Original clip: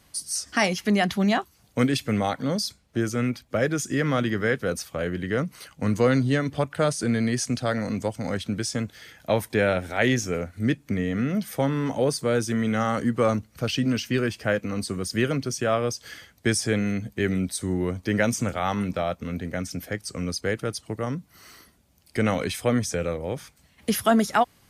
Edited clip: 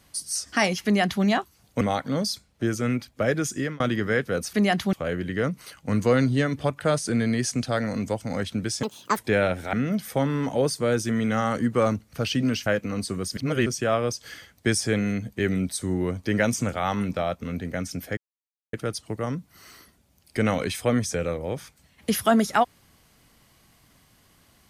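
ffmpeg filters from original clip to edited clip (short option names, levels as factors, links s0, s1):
-filter_complex "[0:a]asplit=13[s0][s1][s2][s3][s4][s5][s6][s7][s8][s9][s10][s11][s12];[s0]atrim=end=1.812[s13];[s1]atrim=start=2.148:end=4.14,asetpts=PTS-STARTPTS,afade=t=out:st=1.652:d=0.34:c=qsin[s14];[s2]atrim=start=4.14:end=4.872,asetpts=PTS-STARTPTS,afade=t=in:d=0.004:c=hsin[s15];[s3]atrim=start=0.838:end=1.242[s16];[s4]atrim=start=4.868:end=8.774[s17];[s5]atrim=start=8.77:end=9.43,asetpts=PTS-STARTPTS,asetrate=85113,aresample=44100[s18];[s6]atrim=start=9.426:end=9.992[s19];[s7]atrim=start=11.158:end=14.092[s20];[s8]atrim=start=14.458:end=15.172[s21];[s9]atrim=start=15.168:end=15.462,asetpts=PTS-STARTPTS,areverse[s22];[s10]atrim=start=15.458:end=19.97,asetpts=PTS-STARTPTS,afade=t=out:st=4.508:d=0.004:c=hsin[s23];[s11]atrim=start=19.97:end=20.53,asetpts=PTS-STARTPTS,volume=0[s24];[s12]atrim=start=20.53,asetpts=PTS-STARTPTS,afade=t=in:d=0.004:c=hsin[s25];[s14][s15]concat=n=2:v=0:a=1[s26];[s13][s26]acrossfade=d=0.004:c1=hsin:c2=hsin[s27];[s27][s16]acrossfade=d=0.004:c1=hsin:c2=hsin[s28];[s28][s17]acrossfade=d=0.004:c1=hsin:c2=hsin[s29];[s29][s18]acrossfade=d=0.004:c1=hsin:c2=hsin[s30];[s30][s19]acrossfade=d=0.004:c1=hsin:c2=hsin[s31];[s31][s20]acrossfade=d=0.004:c1=hsin:c2=hsin[s32];[s32][s21]acrossfade=d=0.004:c1=hsin:c2=hsin[s33];[s33][s22]acrossfade=d=0.004:c1=hsin:c2=hsin[s34];[s23][s24][s25]concat=n=3:v=0:a=1[s35];[s34][s35]acrossfade=d=0.004:c1=hsin:c2=hsin"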